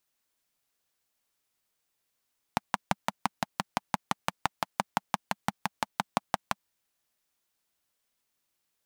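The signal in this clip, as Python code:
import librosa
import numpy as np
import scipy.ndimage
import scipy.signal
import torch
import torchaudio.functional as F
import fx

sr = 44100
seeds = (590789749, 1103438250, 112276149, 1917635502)

y = fx.engine_single(sr, seeds[0], length_s=4.03, rpm=700, resonances_hz=(200.0, 820.0))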